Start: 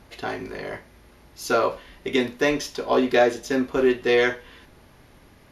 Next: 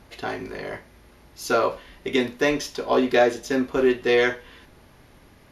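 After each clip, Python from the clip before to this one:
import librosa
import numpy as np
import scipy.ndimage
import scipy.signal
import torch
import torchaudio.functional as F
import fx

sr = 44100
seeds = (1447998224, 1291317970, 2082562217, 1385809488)

y = x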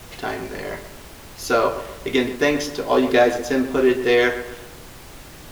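y = fx.dmg_noise_colour(x, sr, seeds[0], colour='pink', level_db=-44.0)
y = fx.echo_filtered(y, sr, ms=127, feedback_pct=46, hz=2000.0, wet_db=-11.0)
y = y * 10.0 ** (2.5 / 20.0)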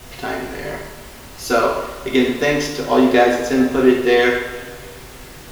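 y = fx.rev_double_slope(x, sr, seeds[1], early_s=0.74, late_s=3.1, knee_db=-18, drr_db=0.0)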